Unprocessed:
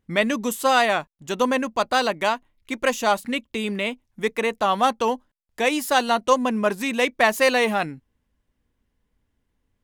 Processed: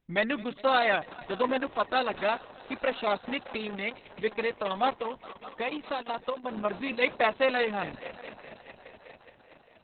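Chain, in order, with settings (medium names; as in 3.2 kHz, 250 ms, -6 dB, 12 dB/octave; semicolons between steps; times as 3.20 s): dynamic bell 230 Hz, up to -5 dB, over -39 dBFS, Q 5.8; 4.99–6.65 s: compression 6:1, threshold -23 dBFS, peak gain reduction 11 dB; multi-head delay 207 ms, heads all three, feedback 65%, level -22 dB; trim -5.5 dB; Opus 6 kbps 48 kHz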